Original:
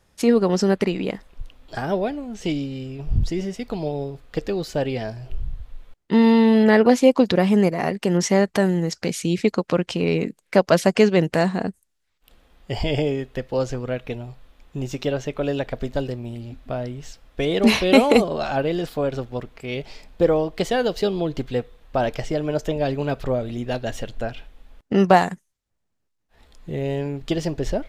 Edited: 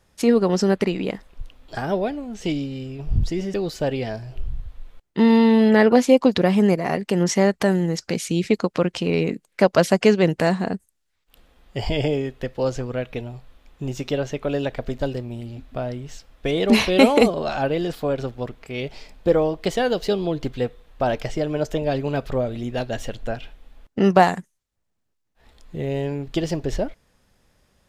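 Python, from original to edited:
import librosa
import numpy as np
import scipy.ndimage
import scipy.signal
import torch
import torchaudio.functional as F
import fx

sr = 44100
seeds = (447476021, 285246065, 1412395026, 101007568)

y = fx.edit(x, sr, fx.cut(start_s=3.54, length_s=0.94), tone=tone)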